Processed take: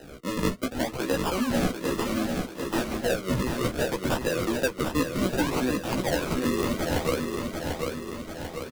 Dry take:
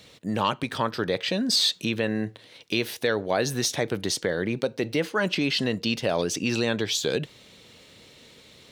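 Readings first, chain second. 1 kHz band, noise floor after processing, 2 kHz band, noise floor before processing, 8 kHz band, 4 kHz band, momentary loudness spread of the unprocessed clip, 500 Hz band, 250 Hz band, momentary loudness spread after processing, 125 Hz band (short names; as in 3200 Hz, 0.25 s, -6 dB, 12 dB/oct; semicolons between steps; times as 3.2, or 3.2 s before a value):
0.0 dB, -41 dBFS, -2.0 dB, -53 dBFS, -4.5 dB, -8.5 dB, 5 LU, -0.5 dB, +1.5 dB, 6 LU, +1.0 dB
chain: HPF 290 Hz 12 dB/oct; in parallel at +0.5 dB: limiter -18 dBFS, peak gain reduction 7.5 dB; on the sum: rotary speaker horn 6 Hz; notch comb 430 Hz; decimation with a swept rate 39×, swing 100% 0.65 Hz; chorus voices 2, 0.45 Hz, delay 14 ms, depth 2.3 ms; on a send: feedback echo 0.743 s, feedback 43%, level -6 dB; on the sum: three-band squash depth 40%; gain +1 dB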